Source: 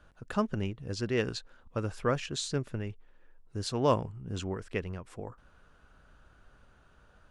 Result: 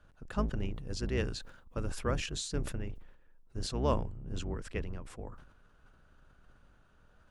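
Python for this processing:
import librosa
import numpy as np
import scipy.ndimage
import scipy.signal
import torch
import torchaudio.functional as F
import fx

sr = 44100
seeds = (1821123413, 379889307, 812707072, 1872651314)

y = fx.octave_divider(x, sr, octaves=2, level_db=4.0)
y = fx.high_shelf(y, sr, hz=9200.0, db=9.5, at=(0.73, 2.74))
y = fx.sustainer(y, sr, db_per_s=75.0)
y = F.gain(torch.from_numpy(y), -5.5).numpy()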